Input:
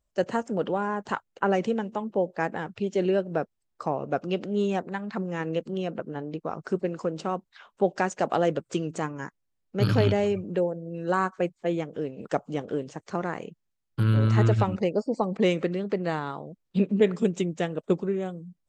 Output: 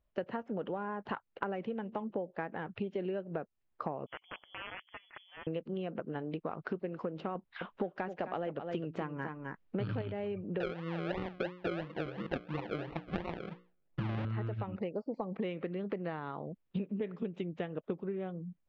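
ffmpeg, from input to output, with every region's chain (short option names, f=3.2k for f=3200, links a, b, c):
-filter_complex "[0:a]asettb=1/sr,asplit=3[a][b][c];[a]atrim=end=4.064[d];[b]atrim=start=4.06:end=5.47,asetpts=PTS-STARTPTS,afade=t=in:d=0.004:c=qsin,afade=t=out:st=1.406:d=0.004:c=qsin,aeval=exprs='(mod(10*val(0)+1,2)-1)/10':c=same,aderivative,lowpass=f=3.1k:t=q:w=0.5098,lowpass=f=3.1k:t=q:w=0.6013,lowpass=f=3.1k:t=q:w=0.9,lowpass=f=3.1k:t=q:w=2.563,afreqshift=-3600[e];[c]atrim=start=5.466[f];[d][e]acrossfade=d=0.004:c1=hsin:c2=qsin[g];[g][f]acrossfade=d=0.004:c1=qsin:c2=hsin,asettb=1/sr,asplit=3[h][i][j];[h]atrim=end=6.054[k];[i]atrim=start=6.05:end=6.85,asetpts=PTS-STARTPTS,afade=t=in:d=0.004:c=qsin,afade=t=out:st=0.796:d=0.004:c=qsin,lowpass=f=4.7k:w=0.5412,lowpass=f=4.7k:w=1.3066,aemphasis=mode=production:type=75fm[l];[j]atrim=start=6.846[m];[k][l]acrossfade=d=0.004:c1=hsin:c2=qsin[n];[n][m]acrossfade=d=0.004:c1=qsin:c2=hsin,asettb=1/sr,asplit=3[o][p][q];[o]atrim=end=7.354[r];[p]atrim=start=7.35:end=10.02,asetpts=PTS-STARTPTS,afade=t=in:d=0.004:c=qsin,afade=t=out:st=2.666:d=0.004:c=qsin,acontrast=38,aecho=1:1:260:0.282,atrim=end_sample=117747[s];[q]atrim=start=10.016[t];[r][s]acrossfade=d=0.004:c1=hsin:c2=qsin[u];[u][t]acrossfade=d=0.004:c1=qsin:c2=hsin,asettb=1/sr,asplit=3[v][w][x];[v]atrim=end=10.604[y];[w]atrim=start=10.6:end=14.25,asetpts=PTS-STARTPTS,afade=t=in:d=0.004:c=qsin,afade=t=out:st=3.646:d=0.004:c=qsin,bandreject=f=60:t=h:w=6,bandreject=f=120:t=h:w=6,bandreject=f=180:t=h:w=6,bandreject=f=240:t=h:w=6,bandreject=f=300:t=h:w=6,bandreject=f=360:t=h:w=6,bandreject=f=420:t=h:w=6,bandreject=f=480:t=h:w=6,bandreject=f=540:t=h:w=6,aecho=1:1:5.8:0.97,atrim=end_sample=160965,acrusher=samples=38:mix=1:aa=0.000001:lfo=1:lforange=22.8:lforate=2.9[z];[x]atrim=start=14.246[aa];[y][z]acrossfade=d=0.004:c1=hsin:c2=qsin[ab];[ab][aa]acrossfade=d=0.004:c1=qsin:c2=hsin,lowpass=f=3.2k:w=0.5412,lowpass=f=3.2k:w=1.3066,acompressor=threshold=-33dB:ratio=12"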